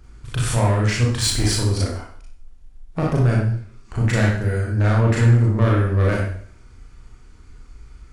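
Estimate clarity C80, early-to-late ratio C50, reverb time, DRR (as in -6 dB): 6.0 dB, 1.5 dB, 0.55 s, -4.0 dB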